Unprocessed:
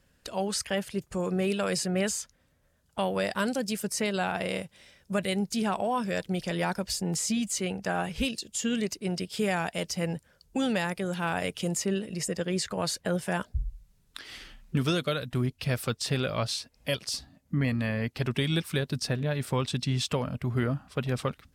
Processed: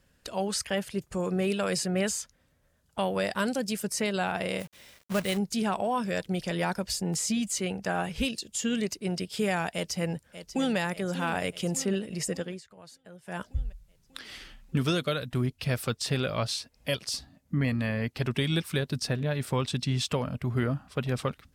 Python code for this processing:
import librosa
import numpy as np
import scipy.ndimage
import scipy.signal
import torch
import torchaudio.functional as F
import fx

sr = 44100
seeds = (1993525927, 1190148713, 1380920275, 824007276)

y = fx.quant_companded(x, sr, bits=4, at=(4.59, 5.36), fade=0.02)
y = fx.echo_throw(y, sr, start_s=9.71, length_s=1.06, ms=590, feedback_pct=60, wet_db=-12.0)
y = fx.edit(y, sr, fx.fade_down_up(start_s=12.33, length_s=1.18, db=-20.5, fade_s=0.28), tone=tone)